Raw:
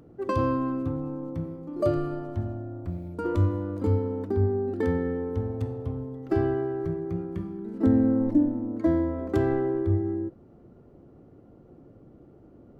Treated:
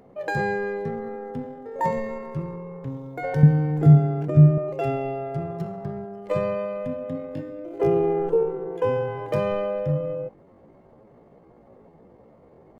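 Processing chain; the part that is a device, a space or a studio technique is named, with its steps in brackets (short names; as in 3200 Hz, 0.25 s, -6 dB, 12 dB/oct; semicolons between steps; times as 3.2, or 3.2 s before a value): chipmunk voice (pitch shift +7.5 st); 3.43–4.58 resonant low shelf 340 Hz +10.5 dB, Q 1.5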